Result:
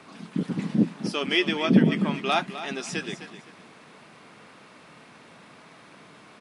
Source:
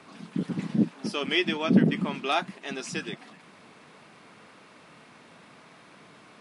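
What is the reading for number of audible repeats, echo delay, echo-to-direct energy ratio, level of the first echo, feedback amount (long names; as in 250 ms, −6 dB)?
2, 257 ms, −12.0 dB, −12.5 dB, 25%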